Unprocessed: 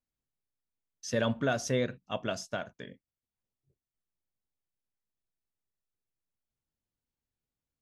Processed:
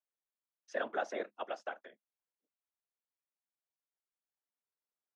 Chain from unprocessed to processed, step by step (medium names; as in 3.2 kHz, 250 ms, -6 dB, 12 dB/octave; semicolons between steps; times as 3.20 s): low-pass 6.2 kHz 12 dB/octave; whisper effect; Chebyshev high-pass 190 Hz, order 8; granular stretch 0.66×, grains 25 ms; three-band isolator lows -22 dB, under 420 Hz, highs -13 dB, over 2.3 kHz; trim -1 dB